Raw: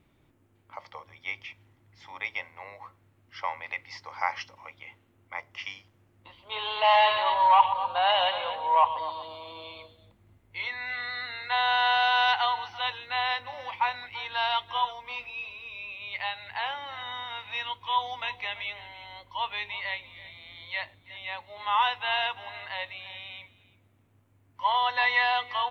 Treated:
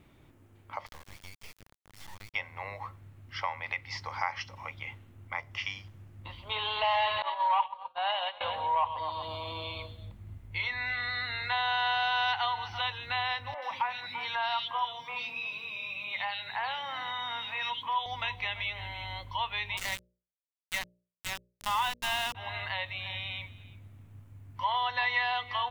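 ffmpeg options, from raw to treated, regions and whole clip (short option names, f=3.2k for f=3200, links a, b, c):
-filter_complex "[0:a]asettb=1/sr,asplit=3[a][b][c];[a]atrim=end=0.864[d];[b]atrim=start=0.86:end=2.34,asetpts=PTS-STARTPTS,afade=t=in:d=0.004:c=qsin,afade=t=out:st=1.476:d=0.004:c=qsin,acompressor=threshold=-48dB:ratio=10:attack=3.2:release=140:knee=1:detection=peak,acrusher=bits=6:dc=4:mix=0:aa=0.000001[e];[c]atrim=start=2.336[f];[d][e]acrossfade=d=0.004:c1=hsin:c2=qsin[g];[g][f]acrossfade=d=0.004:c1=qsin:c2=hsin,asettb=1/sr,asplit=3[h][i][j];[h]atrim=end=7.224[k];[i]atrim=start=7.22:end=8.41,asetpts=PTS-STARTPTS,afade=t=in:d=0.004:c=qsin,afade=t=out:st=1.186:d=0.004:c=qsin,highpass=370,lowpass=5.3k,agate=range=-33dB:threshold=-20dB:ratio=3:release=100:detection=peak[l];[j]atrim=start=8.406[m];[k][l]acrossfade=d=0.004:c1=hsin:c2=qsin[n];[n][m]acrossfade=d=0.004:c1=qsin:c2=hsin,asettb=1/sr,asplit=3[o][p][q];[o]atrim=end=13.544[r];[p]atrim=start=13.54:end=18.06,asetpts=PTS-STARTPTS,afade=t=in:d=0.004:c=qsin,afade=t=out:st=4.516:d=0.004:c=qsin,highpass=f=150:w=0.5412,highpass=f=150:w=1.3066,acrossover=split=350|2500[s][t][u];[u]adelay=80[v];[s]adelay=160[w];[w][t][v]amix=inputs=3:normalize=0,atrim=end_sample=199332[x];[q]atrim=start=18.056[y];[r][x]acrossfade=d=0.004:c1=hsin:c2=qsin[z];[z][y]acrossfade=d=0.004:c1=qsin:c2=hsin,asettb=1/sr,asplit=3[aa][ab][ac];[aa]atrim=end=19.774[ad];[ab]atrim=start=19.77:end=22.35,asetpts=PTS-STARTPTS,afade=t=in:d=0.004:c=qsin,afade=t=out:st=2.576:d=0.004:c=qsin,aeval=exprs='val(0)*gte(abs(val(0)),0.0282)':c=same,bandreject=f=60:t=h:w=6,bandreject=f=120:t=h:w=6,bandreject=f=180:t=h:w=6,bandreject=f=240:t=h:w=6,bandreject=f=300:t=h:w=6,bandreject=f=360:t=h:w=6,bandreject=f=420:t=h:w=6,bandreject=f=480:t=h:w=6,bandreject=f=540:t=h:w=6,bandreject=f=600:t=h:w=6[ae];[ac]atrim=start=22.346[af];[ad][ae]acrossfade=d=0.004:c1=hsin:c2=qsin[ag];[ag][af]acrossfade=d=0.004:c1=qsin:c2=hsin,acompressor=threshold=-39dB:ratio=2,asubboost=boost=3.5:cutoff=180,volume=5.5dB"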